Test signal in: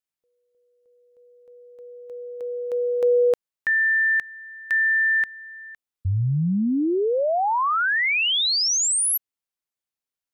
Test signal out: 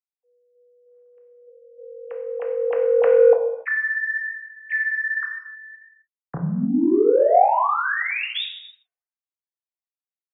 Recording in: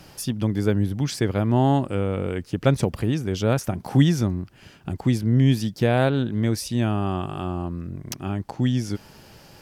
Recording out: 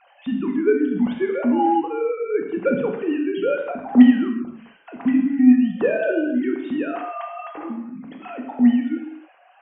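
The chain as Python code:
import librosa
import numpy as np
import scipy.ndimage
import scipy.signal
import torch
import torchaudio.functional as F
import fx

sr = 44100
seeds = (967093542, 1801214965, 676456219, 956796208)

p1 = fx.sine_speech(x, sr)
p2 = 10.0 ** (-13.0 / 20.0) * np.tanh(p1 / 10.0 ** (-13.0 / 20.0))
p3 = p1 + (p2 * librosa.db_to_amplitude(-6.5))
p4 = scipy.signal.sosfilt(scipy.signal.butter(2, 3000.0, 'lowpass', fs=sr, output='sos'), p3)
p5 = fx.rev_gated(p4, sr, seeds[0], gate_ms=330, shape='falling', drr_db=0.5)
y = p5 * librosa.db_to_amplitude(-3.5)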